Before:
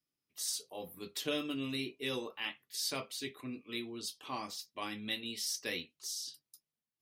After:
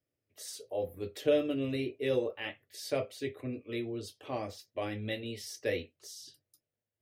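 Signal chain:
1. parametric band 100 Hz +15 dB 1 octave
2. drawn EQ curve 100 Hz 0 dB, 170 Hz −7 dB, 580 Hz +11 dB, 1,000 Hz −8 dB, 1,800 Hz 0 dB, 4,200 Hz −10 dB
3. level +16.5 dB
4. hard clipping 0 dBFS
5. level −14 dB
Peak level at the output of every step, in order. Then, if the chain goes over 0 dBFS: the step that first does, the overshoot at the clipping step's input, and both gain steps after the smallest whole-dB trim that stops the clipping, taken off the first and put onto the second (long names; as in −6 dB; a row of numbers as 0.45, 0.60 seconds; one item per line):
−21.0, −18.0, −1.5, −1.5, −15.5 dBFS
no step passes full scale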